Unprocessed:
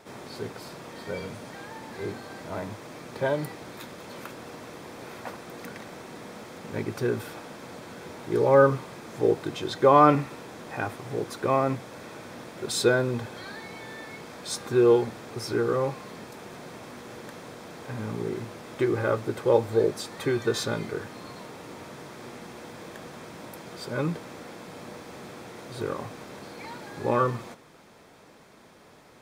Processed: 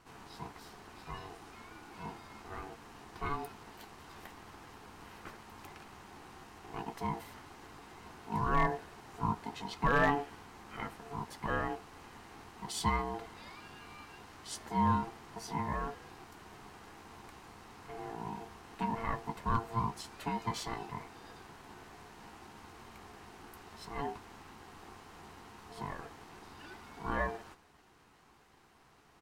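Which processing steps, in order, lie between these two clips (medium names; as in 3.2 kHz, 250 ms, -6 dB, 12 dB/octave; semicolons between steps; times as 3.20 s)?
ring modulator 570 Hz; doubling 14 ms -12 dB; overload inside the chain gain 11 dB; trim -7.5 dB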